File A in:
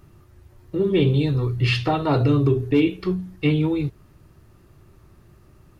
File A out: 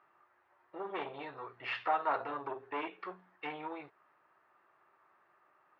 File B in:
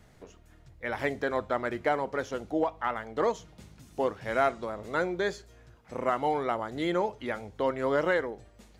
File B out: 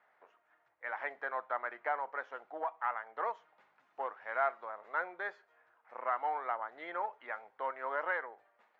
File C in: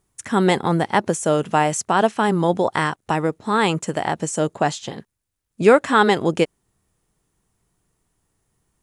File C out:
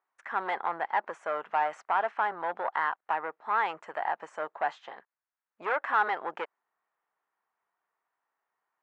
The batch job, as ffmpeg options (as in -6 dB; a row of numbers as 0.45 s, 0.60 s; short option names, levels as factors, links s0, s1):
-af "aeval=exprs='(tanh(5.62*val(0)+0.3)-tanh(0.3))/5.62':c=same,asuperpass=centerf=1200:order=4:qfactor=0.98,volume=0.794"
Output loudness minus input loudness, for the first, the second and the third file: -17.5 LU, -7.5 LU, -11.5 LU